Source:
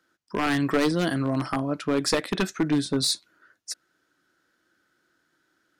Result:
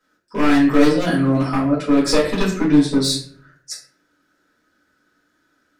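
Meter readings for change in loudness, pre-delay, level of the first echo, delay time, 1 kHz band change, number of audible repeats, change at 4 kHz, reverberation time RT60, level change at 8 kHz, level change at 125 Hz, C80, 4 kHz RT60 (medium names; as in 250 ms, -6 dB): +8.5 dB, 4 ms, no echo, no echo, +6.0 dB, no echo, +4.0 dB, 0.50 s, +3.5 dB, +7.0 dB, 10.0 dB, 0.35 s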